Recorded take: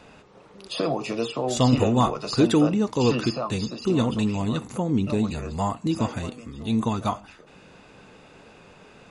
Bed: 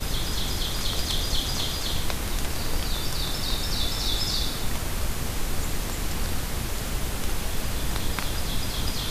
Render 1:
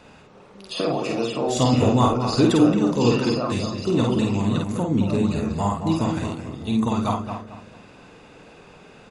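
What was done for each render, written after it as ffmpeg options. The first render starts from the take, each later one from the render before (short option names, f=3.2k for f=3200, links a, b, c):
-filter_complex "[0:a]asplit=2[a][b];[b]adelay=50,volume=-3dB[c];[a][c]amix=inputs=2:normalize=0,asplit=2[d][e];[e]adelay=220,lowpass=f=1.3k:p=1,volume=-6dB,asplit=2[f][g];[g]adelay=220,lowpass=f=1.3k:p=1,volume=0.34,asplit=2[h][i];[i]adelay=220,lowpass=f=1.3k:p=1,volume=0.34,asplit=2[j][k];[k]adelay=220,lowpass=f=1.3k:p=1,volume=0.34[l];[d][f][h][j][l]amix=inputs=5:normalize=0"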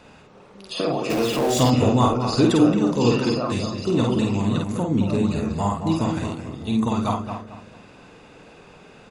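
-filter_complex "[0:a]asettb=1/sr,asplit=3[a][b][c];[a]atrim=end=1.104[d];[b]atrim=start=1.1:end=1.7,asetpts=PTS-STARTPTS,afade=t=in:d=0.004:c=qsin,afade=t=out:st=0.596:d=0.004:c=qsin,aeval=exprs='val(0)+0.5*0.0596*sgn(val(0))':c=same[e];[c]atrim=start=1.696[f];[d][e]acrossfade=d=0.004:c1=hsin:c2=qsin[g];[g][f]acrossfade=d=0.004:c1=qsin:c2=hsin"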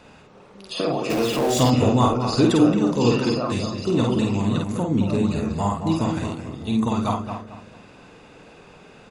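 -af anull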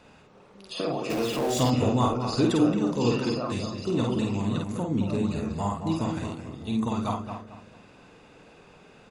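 -af "volume=-5.5dB"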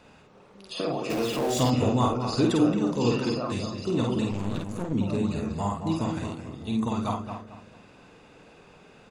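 -filter_complex "[0:a]asettb=1/sr,asplit=3[a][b][c];[a]atrim=end=4.314[d];[b]atrim=start=4.31:end=4.93,asetpts=PTS-STARTPTS,afade=t=in:d=0.004:c=qsin,afade=t=out:st=0.616:d=0.004:c=qsin,aeval=exprs='clip(val(0),-1,0.0119)':c=same[e];[c]atrim=start=4.926[f];[d][e]acrossfade=d=0.004:c1=hsin:c2=qsin[g];[g][f]acrossfade=d=0.004:c1=qsin:c2=hsin"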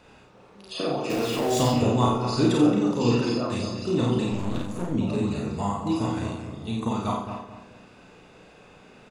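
-filter_complex "[0:a]asplit=2[a][b];[b]adelay=34,volume=-4dB[c];[a][c]amix=inputs=2:normalize=0,aecho=1:1:92:0.299"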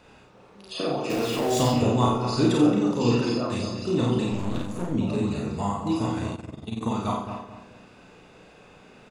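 -filter_complex "[0:a]asettb=1/sr,asplit=3[a][b][c];[a]atrim=end=6.354[d];[b]atrim=start=6.35:end=6.81,asetpts=PTS-STARTPTS,afade=t=in:d=0.004:c=qsin,afade=t=out:st=0.456:d=0.004:c=qsin,tremolo=f=21:d=0.788[e];[c]atrim=start=6.806[f];[d][e]acrossfade=d=0.004:c1=hsin:c2=qsin[g];[g][f]acrossfade=d=0.004:c1=qsin:c2=hsin"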